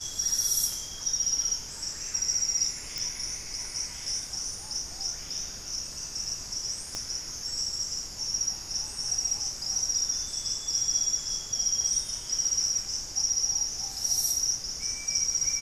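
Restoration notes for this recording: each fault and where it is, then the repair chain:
2.98 s: pop
6.95 s: pop -19 dBFS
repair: de-click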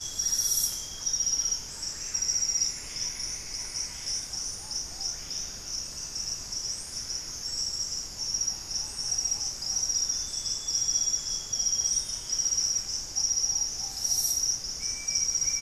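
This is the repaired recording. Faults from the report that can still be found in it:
2.98 s: pop
6.95 s: pop

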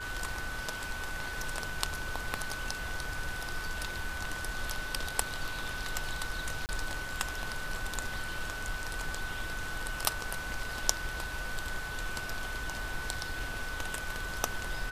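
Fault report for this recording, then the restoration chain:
whine 1.5 kHz -39 dBFS
6.66–6.69 s: dropout 29 ms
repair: band-stop 1.5 kHz, Q 30; interpolate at 6.66 s, 29 ms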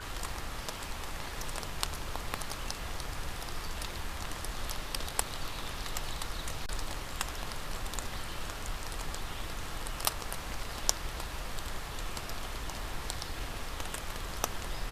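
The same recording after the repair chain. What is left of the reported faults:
nothing left

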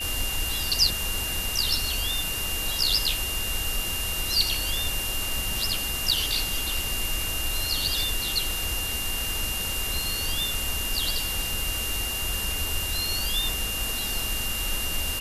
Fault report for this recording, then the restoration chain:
crackle 41 per s -36 dBFS
whine 2.8 kHz -31 dBFS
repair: de-click; band-stop 2.8 kHz, Q 30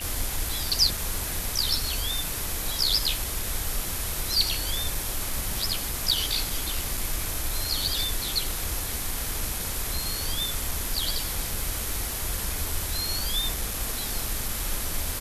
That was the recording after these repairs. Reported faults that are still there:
nothing left

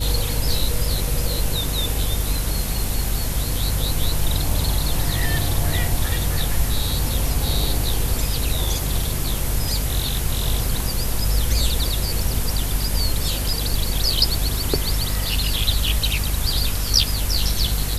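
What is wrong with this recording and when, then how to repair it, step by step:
hum 50 Hz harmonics 5 -25 dBFS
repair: de-hum 50 Hz, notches 5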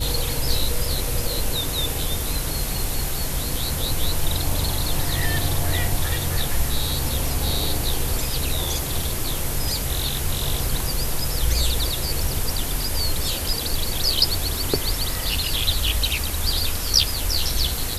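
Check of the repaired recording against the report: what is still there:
nothing left

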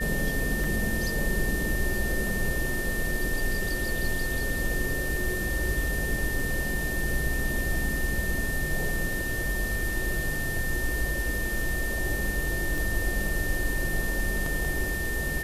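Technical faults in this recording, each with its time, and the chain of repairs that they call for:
whine 1.8 kHz -31 dBFS
0.64 s: dropout 3.3 ms
12.78 s: pop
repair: de-click; band-stop 1.8 kHz, Q 30; interpolate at 0.64 s, 3.3 ms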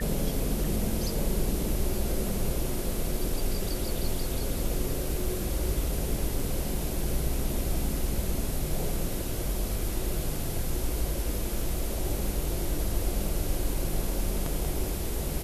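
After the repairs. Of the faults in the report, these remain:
nothing left

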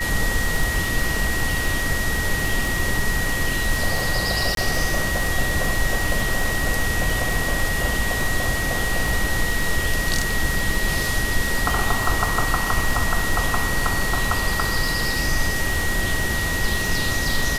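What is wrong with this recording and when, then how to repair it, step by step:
crackle 32 per s -23 dBFS
whine 1.9 kHz -25 dBFS
4.55–4.57 s: dropout 22 ms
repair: de-click; band-stop 1.9 kHz, Q 30; interpolate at 4.55 s, 22 ms

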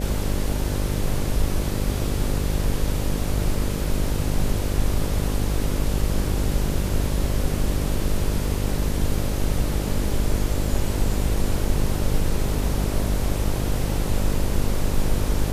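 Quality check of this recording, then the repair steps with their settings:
buzz 50 Hz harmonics 12 -26 dBFS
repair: de-hum 50 Hz, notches 12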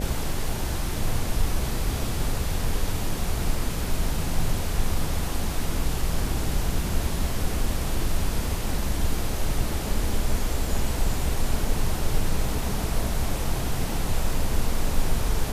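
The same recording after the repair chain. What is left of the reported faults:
nothing left

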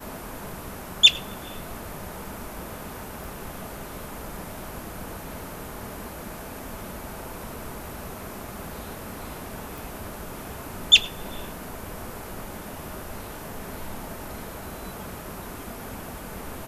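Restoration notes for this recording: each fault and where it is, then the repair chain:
3.24 s: pop
9.78 s: pop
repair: de-click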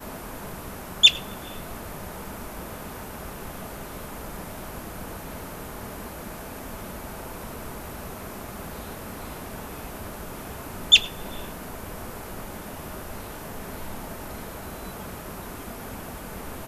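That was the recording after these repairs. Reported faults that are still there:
3.24 s: pop

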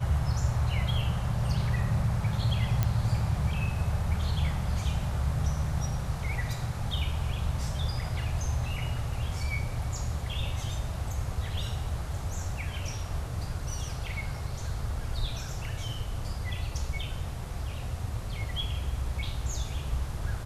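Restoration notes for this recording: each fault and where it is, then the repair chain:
2.83 s: pop -13 dBFS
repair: de-click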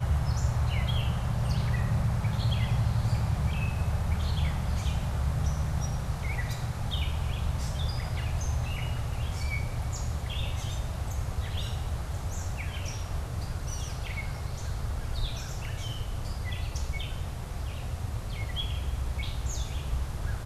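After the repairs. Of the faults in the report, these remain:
nothing left

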